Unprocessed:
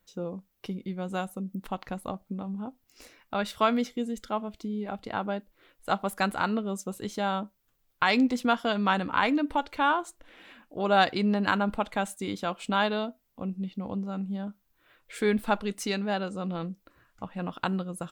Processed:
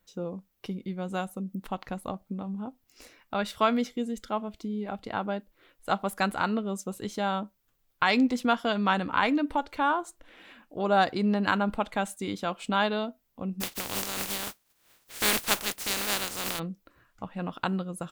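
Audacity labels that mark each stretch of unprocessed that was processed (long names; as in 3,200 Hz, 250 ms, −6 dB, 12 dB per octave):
9.440000	11.240000	dynamic equaliser 2,800 Hz, up to −6 dB, over −41 dBFS, Q 0.95
13.600000	16.580000	compressing power law on the bin magnitudes exponent 0.2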